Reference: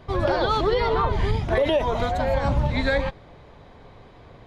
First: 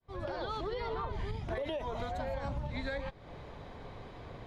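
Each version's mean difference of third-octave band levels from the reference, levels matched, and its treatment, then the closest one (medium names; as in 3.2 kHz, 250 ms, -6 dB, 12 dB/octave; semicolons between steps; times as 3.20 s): 4.5 dB: fade-in on the opening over 1.07 s; compression 6:1, threshold -35 dBFS, peak gain reduction 17 dB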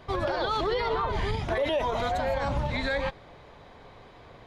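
2.5 dB: bass shelf 390 Hz -7 dB; peak limiter -20.5 dBFS, peak gain reduction 8 dB; trim +1 dB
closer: second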